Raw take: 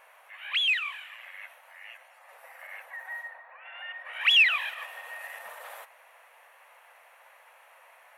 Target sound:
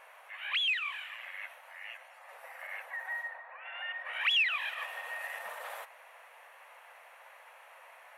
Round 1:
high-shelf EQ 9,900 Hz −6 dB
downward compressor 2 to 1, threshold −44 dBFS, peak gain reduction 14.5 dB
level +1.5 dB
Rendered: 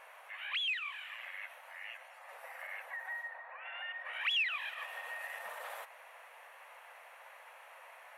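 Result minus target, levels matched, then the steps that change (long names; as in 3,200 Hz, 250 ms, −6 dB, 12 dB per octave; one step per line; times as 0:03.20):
downward compressor: peak gain reduction +4.5 dB
change: downward compressor 2 to 1, threshold −34.5 dBFS, peak gain reduction 10 dB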